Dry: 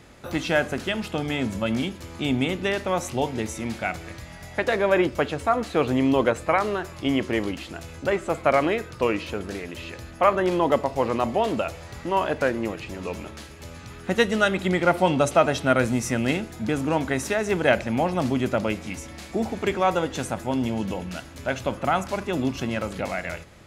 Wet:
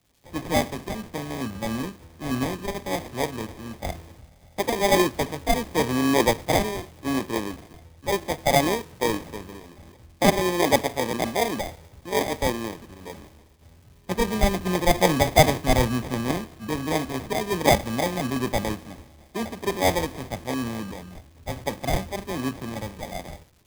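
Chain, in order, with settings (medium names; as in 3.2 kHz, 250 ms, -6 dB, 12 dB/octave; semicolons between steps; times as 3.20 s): sample-rate reducer 1.4 kHz, jitter 0%; crackle 360 per s -35 dBFS; three bands expanded up and down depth 70%; trim -1.5 dB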